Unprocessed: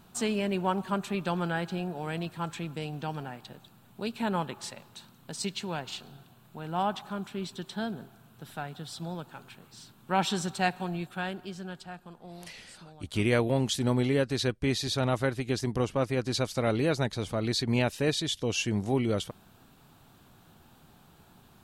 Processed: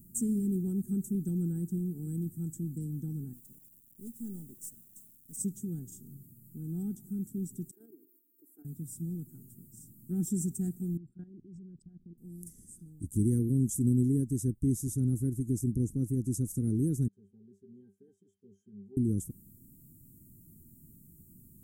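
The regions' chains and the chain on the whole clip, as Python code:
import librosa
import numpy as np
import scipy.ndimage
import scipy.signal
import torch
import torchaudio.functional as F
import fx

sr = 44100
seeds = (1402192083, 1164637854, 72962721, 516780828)

y = fx.chain(x, sr, fx.halfwave_gain(db=-7.0),
    fx.low_shelf(hz=310.0, db=-10.5),
    fx.quant_dither(seeds[0], bits=10, dither='none'), at=(3.33, 5.37))
y = fx.chain(y, sr, fx.ellip_highpass(hz=300.0, order=4, stop_db=40),
    fx.band_shelf(hz=5200.0, db=-9.5, octaves=2.6),
    fx.level_steps(step_db=9), at=(7.71, 8.65))
y = fx.chain(y, sr, fx.envelope_sharpen(power=2.0),
    fx.lowpass(hz=6900.0, slope=12),
    fx.level_steps(step_db=16), at=(10.97, 12.18))
y = fx.chain(y, sr, fx.highpass(hz=450.0, slope=12),
    fx.peak_eq(hz=8900.0, db=-4.0, octaves=0.3),
    fx.octave_resonator(note='G', decay_s=0.18), at=(17.08, 18.97))
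y = scipy.signal.sosfilt(scipy.signal.cheby2(4, 40, [570.0, 4500.0], 'bandstop', fs=sr, output='sos'), y)
y = fx.high_shelf(y, sr, hz=12000.0, db=11.5)
y = y * librosa.db_to_amplitude(2.0)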